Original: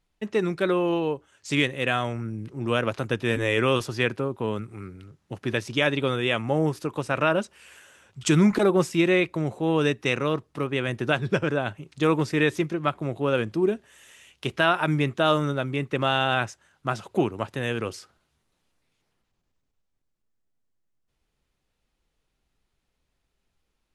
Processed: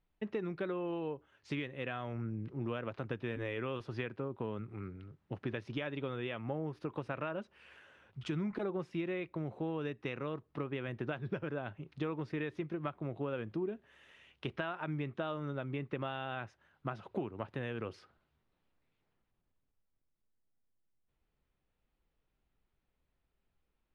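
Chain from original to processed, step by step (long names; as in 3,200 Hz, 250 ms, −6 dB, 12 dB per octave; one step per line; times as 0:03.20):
parametric band 9,700 Hz +10.5 dB 0.37 octaves
downward compressor 6 to 1, threshold −29 dBFS, peak gain reduction 13.5 dB
high-frequency loss of the air 290 metres
level −4.5 dB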